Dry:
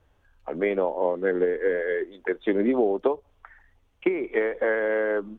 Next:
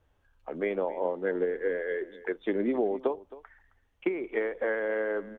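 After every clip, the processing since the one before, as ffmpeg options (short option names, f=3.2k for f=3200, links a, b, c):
-af "aecho=1:1:266:0.126,volume=-5.5dB"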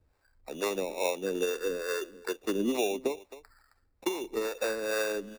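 -filter_complex "[0:a]acrusher=samples=14:mix=1:aa=0.000001,acrossover=split=420[a][b];[a]aeval=exprs='val(0)*(1-0.7/2+0.7/2*cos(2*PI*2.3*n/s))':c=same[c];[b]aeval=exprs='val(0)*(1-0.7/2-0.7/2*cos(2*PI*2.3*n/s))':c=same[d];[c][d]amix=inputs=2:normalize=0,volume=2dB"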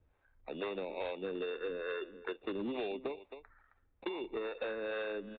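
-af "aresample=8000,volume=25.5dB,asoftclip=hard,volume=-25.5dB,aresample=44100,acompressor=threshold=-33dB:ratio=6,volume=-2dB"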